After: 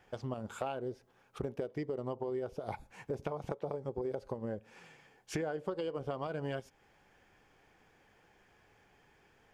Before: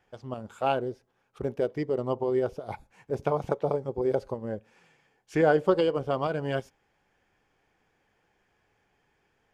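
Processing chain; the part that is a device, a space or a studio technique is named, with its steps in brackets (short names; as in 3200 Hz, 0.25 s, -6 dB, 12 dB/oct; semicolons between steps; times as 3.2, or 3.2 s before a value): serial compression, leveller first (compressor 2:1, threshold -30 dBFS, peak gain reduction 8 dB; compressor 4:1, threshold -41 dBFS, peak gain reduction 14.5 dB); gain +5 dB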